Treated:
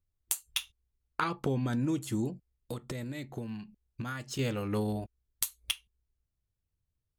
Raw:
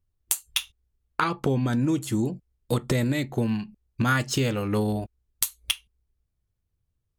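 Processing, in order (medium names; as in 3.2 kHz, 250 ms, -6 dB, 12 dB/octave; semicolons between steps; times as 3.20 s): 2.29–4.39 s: compression 3:1, threshold -31 dBFS, peak gain reduction 9.5 dB; trim -6.5 dB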